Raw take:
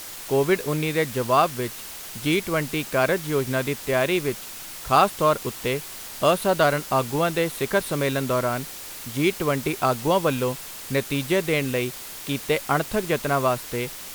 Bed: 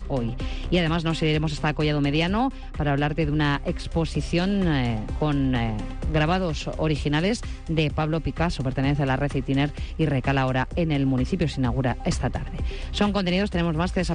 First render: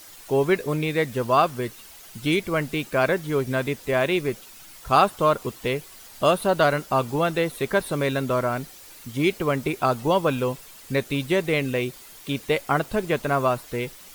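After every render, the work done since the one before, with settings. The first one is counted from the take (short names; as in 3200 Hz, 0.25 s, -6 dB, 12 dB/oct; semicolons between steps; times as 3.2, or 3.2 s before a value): denoiser 10 dB, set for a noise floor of -38 dBFS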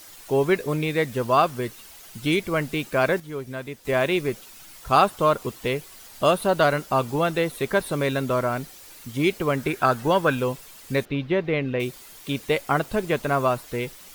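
3.2–3.85 gain -8.5 dB; 9.58–10.35 bell 1600 Hz +11 dB 0.4 oct; 11.05–11.8 air absorption 290 m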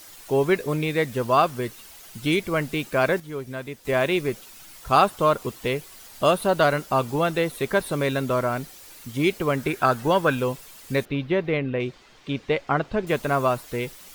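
11.57–13.07 air absorption 160 m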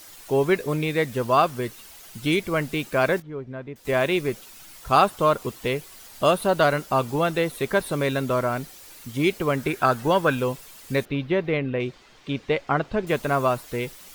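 3.22–3.76 tape spacing loss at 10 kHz 37 dB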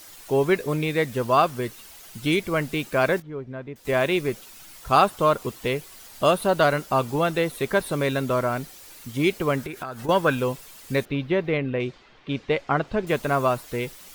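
9.62–10.09 compressor 8:1, threshold -29 dBFS; 11.58–12.87 low-pass opened by the level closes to 2700 Hz, open at -20 dBFS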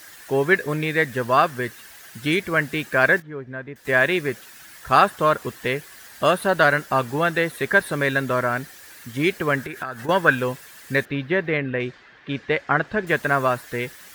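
HPF 58 Hz; bell 1700 Hz +13.5 dB 0.45 oct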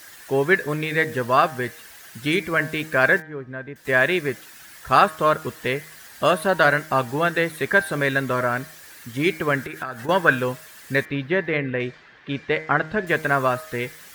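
de-hum 157.2 Hz, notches 15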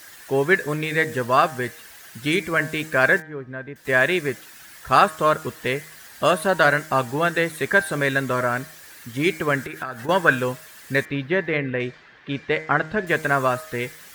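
dynamic EQ 7600 Hz, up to +5 dB, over -46 dBFS, Q 1.6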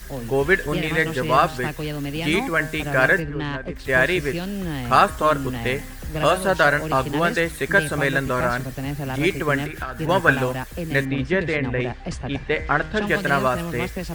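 add bed -5.5 dB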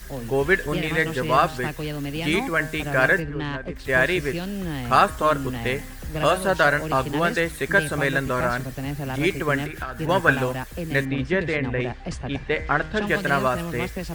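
gain -1.5 dB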